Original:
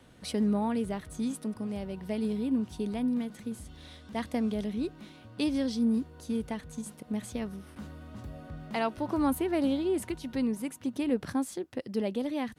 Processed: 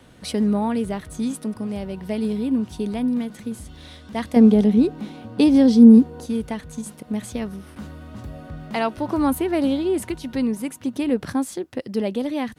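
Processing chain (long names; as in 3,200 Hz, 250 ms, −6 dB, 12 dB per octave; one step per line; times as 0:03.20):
0:04.36–0:06.26: hollow resonant body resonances 230/450/770 Hz, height 11 dB, ringing for 25 ms
level +7 dB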